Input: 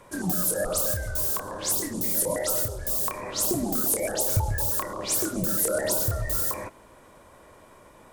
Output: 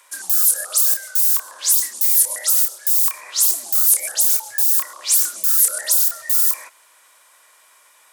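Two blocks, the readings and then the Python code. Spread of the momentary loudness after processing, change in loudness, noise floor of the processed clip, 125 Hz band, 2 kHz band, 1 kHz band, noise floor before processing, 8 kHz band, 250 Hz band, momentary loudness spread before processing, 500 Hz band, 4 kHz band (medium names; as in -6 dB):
3 LU, +10.0 dB, -53 dBFS, under -35 dB, +3.0 dB, -3.5 dB, -53 dBFS, +10.5 dB, under -25 dB, 3 LU, -13.5 dB, +8.5 dB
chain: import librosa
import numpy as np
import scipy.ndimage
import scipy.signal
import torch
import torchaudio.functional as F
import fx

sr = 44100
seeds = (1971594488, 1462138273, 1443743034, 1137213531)

y = scipy.signal.sosfilt(scipy.signal.butter(2, 1400.0, 'highpass', fs=sr, output='sos'), x)
y = fx.high_shelf(y, sr, hz=3300.0, db=9.0)
y = F.gain(torch.from_numpy(y), 2.5).numpy()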